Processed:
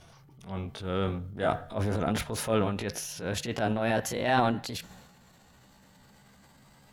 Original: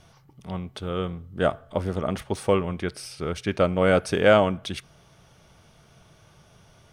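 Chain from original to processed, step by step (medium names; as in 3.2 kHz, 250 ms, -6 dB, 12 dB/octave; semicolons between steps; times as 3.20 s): pitch bend over the whole clip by +5.5 st starting unshifted; gain riding within 3 dB 0.5 s; transient shaper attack -7 dB, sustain +8 dB; trim -3 dB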